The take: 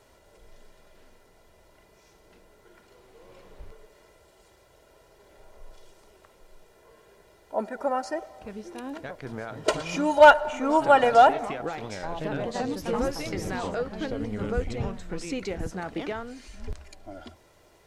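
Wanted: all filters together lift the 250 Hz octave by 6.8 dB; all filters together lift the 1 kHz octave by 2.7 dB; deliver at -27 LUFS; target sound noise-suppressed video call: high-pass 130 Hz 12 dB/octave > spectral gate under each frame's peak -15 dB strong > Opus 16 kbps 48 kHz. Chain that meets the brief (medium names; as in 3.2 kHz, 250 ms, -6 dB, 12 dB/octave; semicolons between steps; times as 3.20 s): high-pass 130 Hz 12 dB/octave; peaking EQ 250 Hz +8.5 dB; peaking EQ 1 kHz +3 dB; spectral gate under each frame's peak -15 dB strong; trim -4 dB; Opus 16 kbps 48 kHz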